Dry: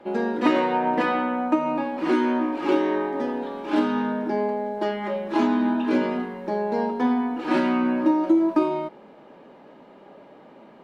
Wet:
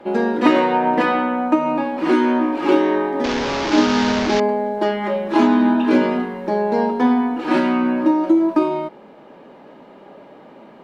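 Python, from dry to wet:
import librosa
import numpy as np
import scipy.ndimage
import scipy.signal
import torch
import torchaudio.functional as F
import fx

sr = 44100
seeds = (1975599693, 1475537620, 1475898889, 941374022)

y = fx.delta_mod(x, sr, bps=32000, step_db=-21.5, at=(3.24, 4.4))
y = fx.rider(y, sr, range_db=10, speed_s=2.0)
y = y * librosa.db_to_amplitude(5.0)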